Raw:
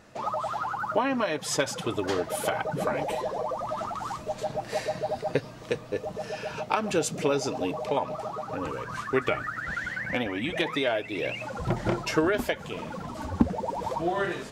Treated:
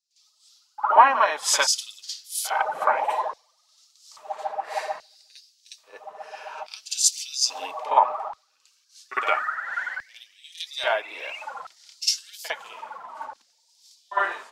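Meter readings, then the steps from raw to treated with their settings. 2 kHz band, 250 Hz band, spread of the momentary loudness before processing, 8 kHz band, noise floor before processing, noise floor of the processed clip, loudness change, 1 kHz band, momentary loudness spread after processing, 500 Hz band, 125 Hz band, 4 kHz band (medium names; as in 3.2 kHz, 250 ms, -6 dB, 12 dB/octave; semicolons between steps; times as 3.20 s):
+3.0 dB, under -20 dB, 8 LU, +11.5 dB, -43 dBFS, -66 dBFS, +5.5 dB, +7.0 dB, 19 LU, -4.5 dB, under -35 dB, +7.5 dB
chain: LFO high-pass square 0.6 Hz 930–4800 Hz; reverse echo 54 ms -6.5 dB; three bands expanded up and down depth 100%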